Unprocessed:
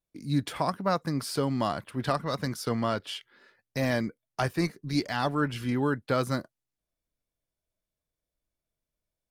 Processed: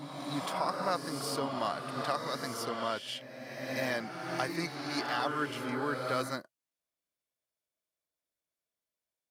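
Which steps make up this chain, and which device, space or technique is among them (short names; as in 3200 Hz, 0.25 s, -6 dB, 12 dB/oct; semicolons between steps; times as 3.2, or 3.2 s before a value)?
ghost voice (reverse; reverb RT60 2.3 s, pre-delay 24 ms, DRR 2 dB; reverse; HPF 560 Hz 6 dB/oct); gain -3 dB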